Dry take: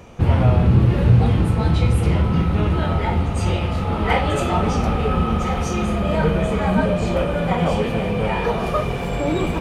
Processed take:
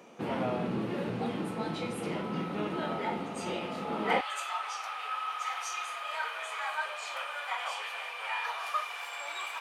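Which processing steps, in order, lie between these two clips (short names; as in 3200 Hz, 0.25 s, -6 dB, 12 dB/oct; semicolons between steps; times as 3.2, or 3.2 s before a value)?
HPF 210 Hz 24 dB/oct, from 4.21 s 1000 Hz; vocal rider within 3 dB 2 s; gain -8 dB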